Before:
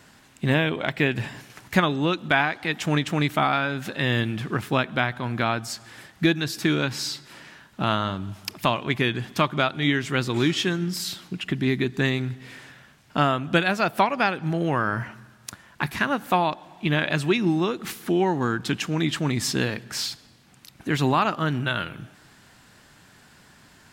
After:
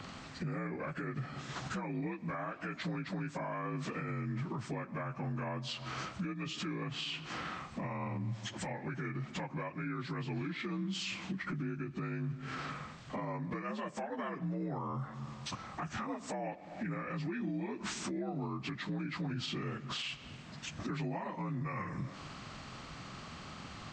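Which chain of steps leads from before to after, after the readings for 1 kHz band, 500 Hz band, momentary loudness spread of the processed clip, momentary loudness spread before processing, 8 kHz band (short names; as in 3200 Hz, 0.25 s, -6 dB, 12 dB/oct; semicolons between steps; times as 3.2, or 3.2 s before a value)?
-15.5 dB, -16.0 dB, 6 LU, 11 LU, -13.5 dB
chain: inharmonic rescaling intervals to 84%; low shelf 120 Hz +10 dB; compressor 16:1, threshold -39 dBFS, peak gain reduction 25 dB; limiter -36.5 dBFS, peak gain reduction 8 dB; gain +6.5 dB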